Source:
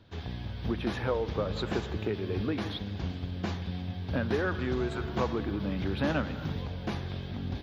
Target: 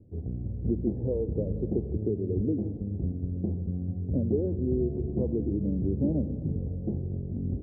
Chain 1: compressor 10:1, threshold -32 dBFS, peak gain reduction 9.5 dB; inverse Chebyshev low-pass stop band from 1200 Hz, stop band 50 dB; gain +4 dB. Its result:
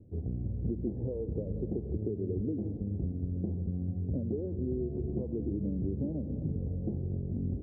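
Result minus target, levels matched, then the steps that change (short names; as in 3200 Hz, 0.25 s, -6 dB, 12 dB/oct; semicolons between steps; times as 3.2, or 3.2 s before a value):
compressor: peak gain reduction +9.5 dB
remove: compressor 10:1, threshold -32 dBFS, peak gain reduction 9.5 dB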